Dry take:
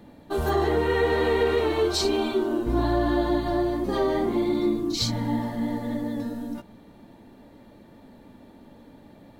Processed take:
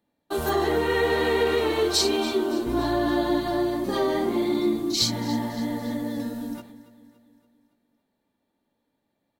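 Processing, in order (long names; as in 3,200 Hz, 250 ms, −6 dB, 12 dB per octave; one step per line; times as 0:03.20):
dynamic equaliser 230 Hz, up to +4 dB, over −36 dBFS, Q 0.72
noise gate −43 dBFS, range −24 dB
spectral tilt +2 dB per octave
repeating echo 283 ms, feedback 52%, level −17 dB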